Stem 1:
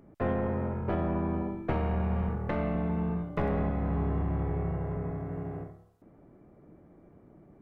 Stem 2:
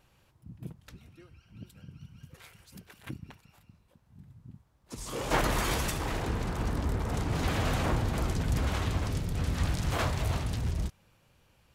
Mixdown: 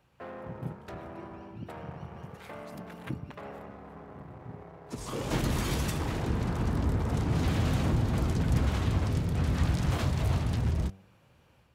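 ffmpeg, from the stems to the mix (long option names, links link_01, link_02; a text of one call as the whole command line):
ffmpeg -i stem1.wav -i stem2.wav -filter_complex "[0:a]asoftclip=type=tanh:threshold=-29.5dB,highpass=frequency=620:poles=1,aeval=exprs='sgn(val(0))*max(abs(val(0))-0.0015,0)':channel_layout=same,volume=-2dB[link_01];[1:a]highpass=65,bandreject=frequency=96.24:width_type=h:width=4,bandreject=frequency=192.48:width_type=h:width=4,bandreject=frequency=288.72:width_type=h:width=4,bandreject=frequency=384.96:width_type=h:width=4,bandreject=frequency=481.2:width_type=h:width=4,bandreject=frequency=577.44:width_type=h:width=4,bandreject=frequency=673.68:width_type=h:width=4,bandreject=frequency=769.92:width_type=h:width=4,dynaudnorm=framelen=190:gausssize=3:maxgain=5dB,volume=0dB[link_02];[link_01][link_02]amix=inputs=2:normalize=0,highshelf=frequency=3000:gain=-9.5,acrossover=split=320|3000[link_03][link_04][link_05];[link_04]acompressor=threshold=-37dB:ratio=6[link_06];[link_03][link_06][link_05]amix=inputs=3:normalize=0" out.wav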